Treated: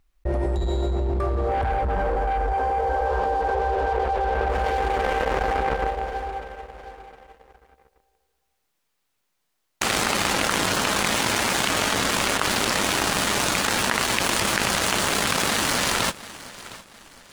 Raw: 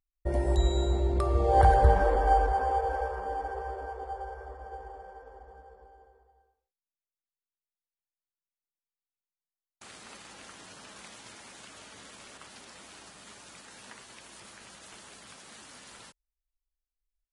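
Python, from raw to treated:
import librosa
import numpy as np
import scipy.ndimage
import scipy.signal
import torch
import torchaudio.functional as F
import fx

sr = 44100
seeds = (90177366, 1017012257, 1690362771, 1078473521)

y = fx.leveller(x, sr, passes=3)
y = fx.high_shelf(y, sr, hz=4300.0, db=fx.steps((0.0, -11.0), (4.49, 2.0), (5.56, -6.5)))
y = fx.echo_feedback(y, sr, ms=712, feedback_pct=38, wet_db=-21.5)
y = fx.env_flatten(y, sr, amount_pct=100)
y = F.gain(torch.from_numpy(y), -11.0).numpy()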